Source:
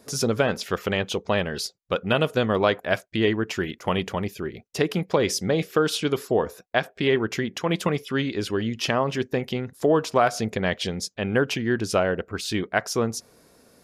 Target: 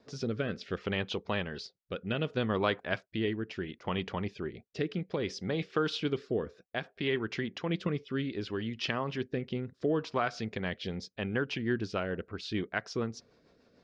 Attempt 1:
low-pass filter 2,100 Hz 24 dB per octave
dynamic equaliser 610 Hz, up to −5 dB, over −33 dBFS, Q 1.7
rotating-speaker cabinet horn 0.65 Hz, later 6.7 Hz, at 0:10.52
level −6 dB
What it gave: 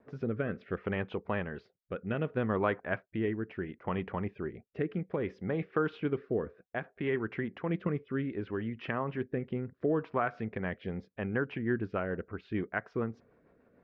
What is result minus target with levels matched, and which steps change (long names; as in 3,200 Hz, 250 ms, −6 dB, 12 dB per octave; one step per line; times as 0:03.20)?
4,000 Hz band −14.5 dB
change: low-pass filter 4,800 Hz 24 dB per octave